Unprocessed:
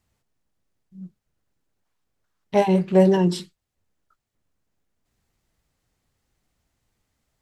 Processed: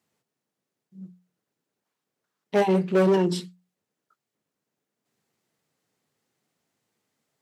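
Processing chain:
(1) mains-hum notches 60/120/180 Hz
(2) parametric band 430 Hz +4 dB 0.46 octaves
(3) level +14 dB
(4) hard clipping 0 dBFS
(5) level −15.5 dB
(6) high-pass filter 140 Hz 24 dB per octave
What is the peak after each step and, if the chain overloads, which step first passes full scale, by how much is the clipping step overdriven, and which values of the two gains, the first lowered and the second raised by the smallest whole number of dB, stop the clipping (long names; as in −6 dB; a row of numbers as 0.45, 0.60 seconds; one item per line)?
−4.5, −4.0, +10.0, 0.0, −15.5, −9.5 dBFS
step 3, 10.0 dB
step 3 +4 dB, step 5 −5.5 dB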